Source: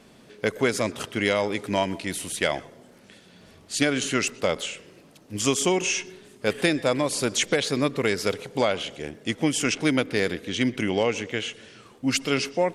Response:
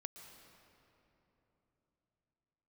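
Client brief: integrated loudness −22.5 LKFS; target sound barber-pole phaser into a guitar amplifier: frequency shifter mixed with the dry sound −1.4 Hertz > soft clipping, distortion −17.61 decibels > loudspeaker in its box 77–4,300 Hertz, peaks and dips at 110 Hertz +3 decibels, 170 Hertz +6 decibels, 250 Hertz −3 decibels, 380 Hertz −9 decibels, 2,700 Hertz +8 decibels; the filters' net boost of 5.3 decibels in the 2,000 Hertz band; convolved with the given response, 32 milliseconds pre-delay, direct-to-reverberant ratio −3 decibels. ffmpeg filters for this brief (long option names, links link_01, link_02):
-filter_complex "[0:a]equalizer=frequency=2000:width_type=o:gain=3,asplit=2[link_01][link_02];[1:a]atrim=start_sample=2205,adelay=32[link_03];[link_02][link_03]afir=irnorm=-1:irlink=0,volume=7dB[link_04];[link_01][link_04]amix=inputs=2:normalize=0,asplit=2[link_05][link_06];[link_06]afreqshift=-1.4[link_07];[link_05][link_07]amix=inputs=2:normalize=1,asoftclip=threshold=-13dB,highpass=77,equalizer=frequency=110:width_type=q:width=4:gain=3,equalizer=frequency=170:width_type=q:width=4:gain=6,equalizer=frequency=250:width_type=q:width=4:gain=-3,equalizer=frequency=380:width_type=q:width=4:gain=-9,equalizer=frequency=2700:width_type=q:width=4:gain=8,lowpass=frequency=4300:width=0.5412,lowpass=frequency=4300:width=1.3066,volume=1.5dB"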